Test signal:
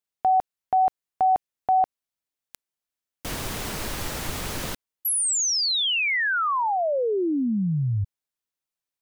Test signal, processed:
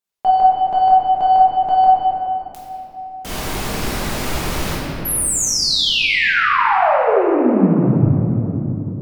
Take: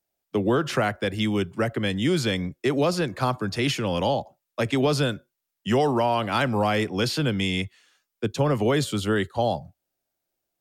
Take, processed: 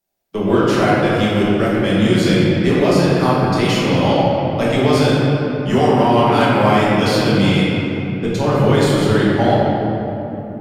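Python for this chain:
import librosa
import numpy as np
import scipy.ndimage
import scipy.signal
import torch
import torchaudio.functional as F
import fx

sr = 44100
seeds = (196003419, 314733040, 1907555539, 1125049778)

y = fx.cheby_harmonics(x, sr, harmonics=(8,), levels_db=(-31,), full_scale_db=-10.5)
y = fx.room_shoebox(y, sr, seeds[0], volume_m3=200.0, walls='hard', distance_m=1.2)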